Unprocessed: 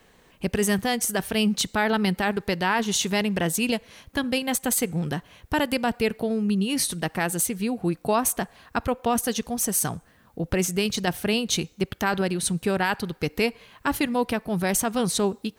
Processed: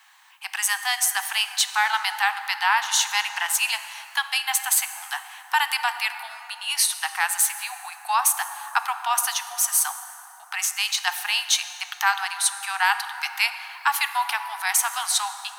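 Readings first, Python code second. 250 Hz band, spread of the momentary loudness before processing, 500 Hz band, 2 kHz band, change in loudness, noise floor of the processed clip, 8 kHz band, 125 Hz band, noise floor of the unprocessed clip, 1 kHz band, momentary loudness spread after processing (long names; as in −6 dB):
below −40 dB, 6 LU, −21.5 dB, +5.5 dB, +2.0 dB, −45 dBFS, +5.0 dB, below −40 dB, −58 dBFS, +4.0 dB, 11 LU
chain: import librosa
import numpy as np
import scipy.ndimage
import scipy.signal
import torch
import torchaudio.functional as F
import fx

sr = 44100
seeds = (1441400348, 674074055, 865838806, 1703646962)

p1 = scipy.signal.sosfilt(scipy.signal.butter(16, 780.0, 'highpass', fs=sr, output='sos'), x)
p2 = fx.rider(p1, sr, range_db=4, speed_s=0.5)
p3 = p1 + (p2 * 10.0 ** (-2.0 / 20.0))
y = fx.rev_plate(p3, sr, seeds[0], rt60_s=3.7, hf_ratio=0.45, predelay_ms=0, drr_db=9.0)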